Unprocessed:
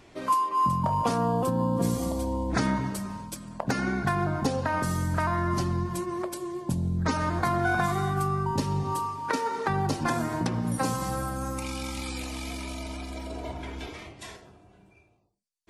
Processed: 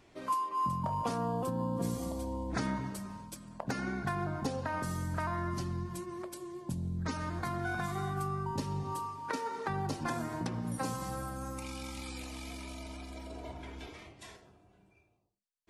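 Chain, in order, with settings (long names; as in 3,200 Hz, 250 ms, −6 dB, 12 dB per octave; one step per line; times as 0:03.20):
0:05.49–0:07.95: dynamic equaliser 740 Hz, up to −4 dB, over −38 dBFS, Q 0.71
level −8 dB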